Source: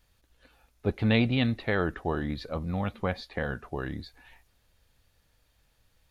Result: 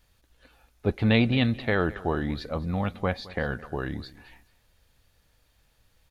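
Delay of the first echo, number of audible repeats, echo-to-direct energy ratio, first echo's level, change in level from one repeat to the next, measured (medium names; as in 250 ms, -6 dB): 216 ms, 2, -19.5 dB, -19.5 dB, -12.5 dB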